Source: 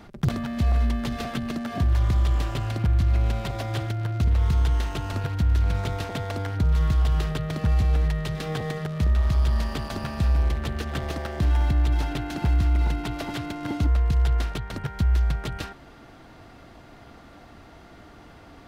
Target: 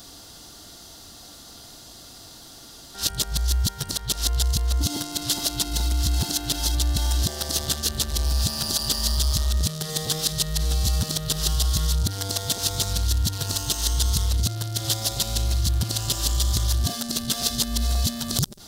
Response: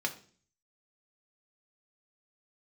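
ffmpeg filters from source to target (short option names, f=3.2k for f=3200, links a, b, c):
-af "areverse,aexciter=amount=15.2:drive=3.5:freq=3.5k,volume=-2.5dB"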